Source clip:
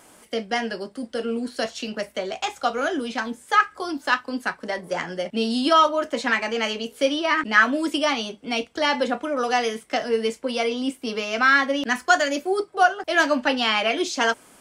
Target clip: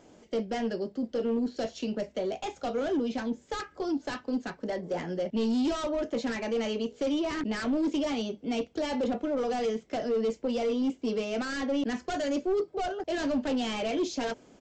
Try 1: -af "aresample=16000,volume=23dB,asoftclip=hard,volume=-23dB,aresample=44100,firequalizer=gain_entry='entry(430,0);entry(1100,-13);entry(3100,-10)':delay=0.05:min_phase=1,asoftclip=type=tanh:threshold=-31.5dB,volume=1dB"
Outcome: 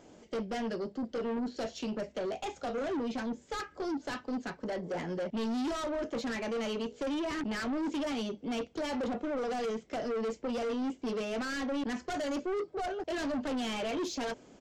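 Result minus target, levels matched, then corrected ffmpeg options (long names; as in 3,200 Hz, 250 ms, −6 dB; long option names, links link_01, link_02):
soft clipping: distortion +14 dB
-af "aresample=16000,volume=23dB,asoftclip=hard,volume=-23dB,aresample=44100,firequalizer=gain_entry='entry(430,0);entry(1100,-13);entry(3100,-10)':delay=0.05:min_phase=1,asoftclip=type=tanh:threshold=-21dB,volume=1dB"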